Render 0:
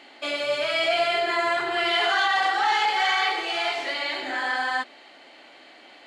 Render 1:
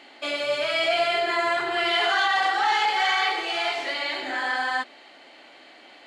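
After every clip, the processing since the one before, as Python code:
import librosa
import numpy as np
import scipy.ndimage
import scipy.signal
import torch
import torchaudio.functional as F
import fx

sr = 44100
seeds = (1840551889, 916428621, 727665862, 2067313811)

y = x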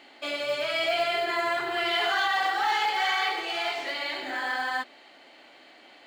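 y = fx.low_shelf(x, sr, hz=150.0, db=3.0)
y = fx.quant_float(y, sr, bits=4)
y = F.gain(torch.from_numpy(y), -3.5).numpy()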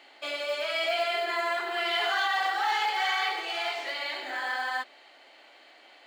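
y = scipy.signal.sosfilt(scipy.signal.butter(2, 410.0, 'highpass', fs=sr, output='sos'), x)
y = F.gain(torch.from_numpy(y), -1.5).numpy()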